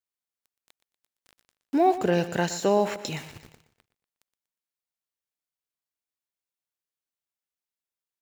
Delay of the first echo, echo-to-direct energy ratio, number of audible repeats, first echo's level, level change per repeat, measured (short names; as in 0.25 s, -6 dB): 0.12 s, -13.0 dB, 3, -14.0 dB, -8.0 dB